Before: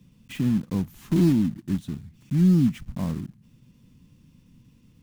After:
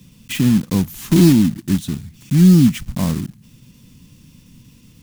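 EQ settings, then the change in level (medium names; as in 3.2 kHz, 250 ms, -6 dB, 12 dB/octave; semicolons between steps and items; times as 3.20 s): treble shelf 2.8 kHz +10.5 dB; +8.5 dB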